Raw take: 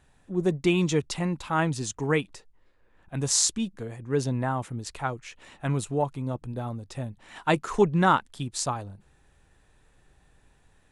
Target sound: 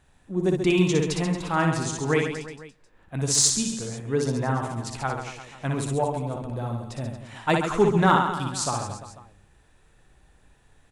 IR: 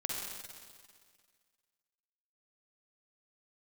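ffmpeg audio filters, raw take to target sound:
-filter_complex "[0:a]aecho=1:1:60|135|228.8|345.9|492.4:0.631|0.398|0.251|0.158|0.1,asplit=2[a][b];[1:a]atrim=start_sample=2205,afade=t=out:st=0.31:d=0.01,atrim=end_sample=14112[c];[b][c]afir=irnorm=-1:irlink=0,volume=-23.5dB[d];[a][d]amix=inputs=2:normalize=0,asoftclip=type=hard:threshold=-9dB"

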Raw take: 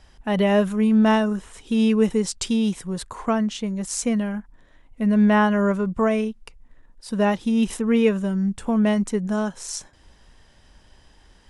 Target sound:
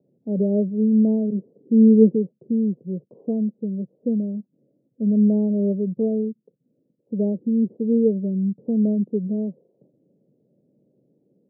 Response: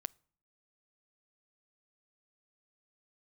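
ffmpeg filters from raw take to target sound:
-filter_complex "[0:a]asettb=1/sr,asplit=3[a][b][c];[a]atrim=end=1.304[d];[b]atrim=start=1.3:end=2.15,asetpts=PTS-STARTPTS,afade=t=in:d=0.004:c=qsin,afade=t=out:st=0.846:d=0.004:c=qsin,adynamicequalizer=threshold=0.0316:dfrequency=280:dqfactor=0.75:tfrequency=280:tqfactor=0.75:attack=5:release=100:ratio=0.375:range=3.5:mode=boostabove:tftype=bell[e];[c]atrim=start=2.146[f];[d][e]acrossfade=d=0.004:c1=hsin:c2=qsin[g];[g][f]acrossfade=d=0.004:c1=qsin:c2=hsin,asuperpass=centerf=270:order=12:qfactor=0.64"

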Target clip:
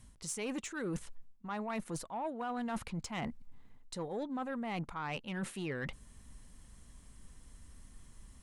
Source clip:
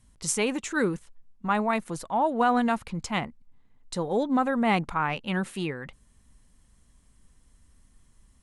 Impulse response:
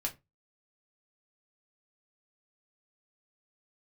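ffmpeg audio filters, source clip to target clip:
-af "areverse,acompressor=threshold=-38dB:ratio=16,areverse,asoftclip=type=tanh:threshold=-34dB,volume=4.5dB"

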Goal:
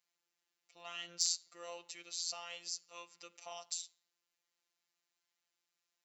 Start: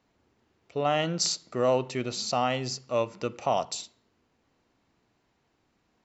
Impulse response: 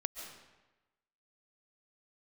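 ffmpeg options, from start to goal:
-af "aderivative,volume=20dB,asoftclip=hard,volume=-20dB,afftfilt=real='hypot(re,im)*cos(PI*b)':imag='0':win_size=1024:overlap=0.75"

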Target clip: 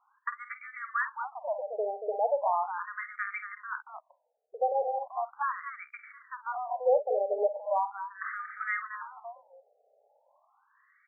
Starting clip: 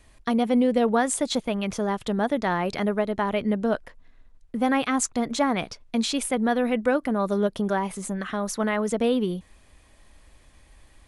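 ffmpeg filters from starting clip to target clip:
-af "aecho=1:1:49.56|233.2:0.282|0.398,afftfilt=real='re*between(b*sr/1024,560*pow(1700/560,0.5+0.5*sin(2*PI*0.38*pts/sr))/1.41,560*pow(1700/560,0.5+0.5*sin(2*PI*0.38*pts/sr))*1.41)':imag='im*between(b*sr/1024,560*pow(1700/560,0.5+0.5*sin(2*PI*0.38*pts/sr))/1.41,560*pow(1700/560,0.5+0.5*sin(2*PI*0.38*pts/sr))*1.41)':win_size=1024:overlap=0.75"

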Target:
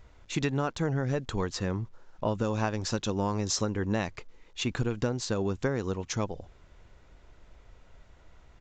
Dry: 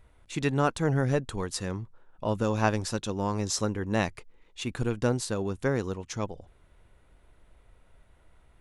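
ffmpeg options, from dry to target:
-filter_complex "[0:a]asettb=1/sr,asplit=3[a][b][c];[a]atrim=end=1.514[d];[b]atrim=start=1.51:end=2.28,asetpts=PTS-STARTPTS,afade=t=in:d=0.004:c=qsin,afade=t=out:st=0.766:d=0.004:c=qsin,highshelf=f=4k:g=-8.5[e];[c]atrim=start=2.276[f];[d][e]acrossfade=d=0.004:c1=hsin:c2=qsin[g];[g][f]acrossfade=d=0.004:c1=qsin:c2=hsin,acompressor=threshold=-28dB:ratio=10,acrusher=bits=11:mix=0:aa=0.000001,aresample=16000,aresample=44100,volume=4dB"

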